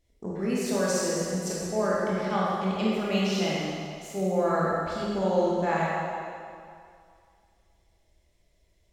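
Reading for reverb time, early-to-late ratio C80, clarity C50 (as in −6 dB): 2.3 s, −1.5 dB, −4.0 dB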